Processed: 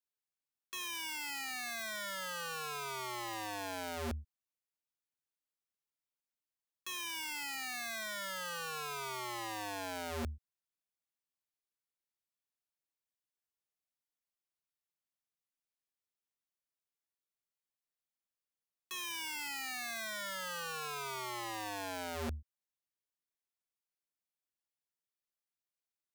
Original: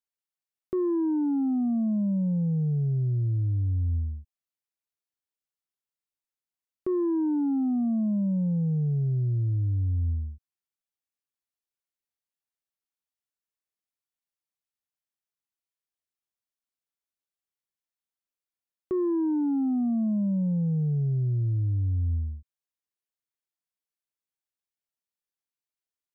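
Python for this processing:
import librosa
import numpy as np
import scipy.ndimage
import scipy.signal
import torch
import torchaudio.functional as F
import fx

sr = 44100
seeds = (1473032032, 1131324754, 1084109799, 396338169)

y = (np.mod(10.0 ** (29.5 / 20.0) * x + 1.0, 2.0) - 1.0) / 10.0 ** (29.5 / 20.0)
y = F.gain(torch.from_numpy(y), -4.5).numpy()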